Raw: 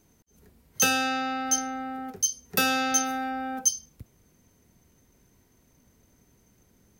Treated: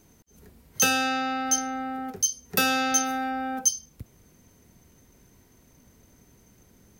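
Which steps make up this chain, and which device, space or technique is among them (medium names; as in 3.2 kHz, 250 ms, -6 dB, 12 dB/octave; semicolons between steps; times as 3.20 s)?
parallel compression (in parallel at -2 dB: compression, threshold -40 dBFS, peak gain reduction 20.5 dB)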